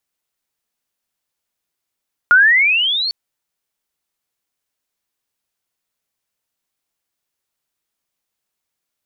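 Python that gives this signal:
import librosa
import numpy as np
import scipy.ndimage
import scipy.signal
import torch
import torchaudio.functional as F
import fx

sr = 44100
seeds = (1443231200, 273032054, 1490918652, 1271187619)

y = fx.chirp(sr, length_s=0.8, from_hz=1400.0, to_hz=4500.0, law='logarithmic', from_db=-5.5, to_db=-17.5)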